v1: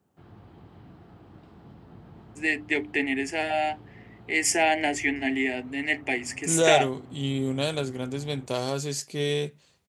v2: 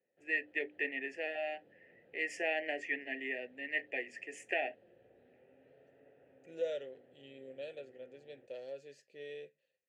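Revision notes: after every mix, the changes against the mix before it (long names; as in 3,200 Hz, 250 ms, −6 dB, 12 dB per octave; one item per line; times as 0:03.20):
first voice: entry −2.15 s
second voice −8.5 dB
master: add formant filter e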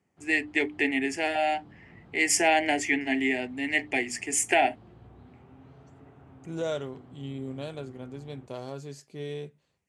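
second voice: add high-shelf EQ 2,600 Hz −11.5 dB
background −4.5 dB
master: remove formant filter e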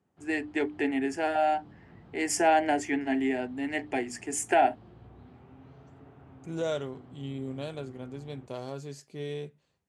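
first voice: add high shelf with overshoot 1,700 Hz −6 dB, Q 3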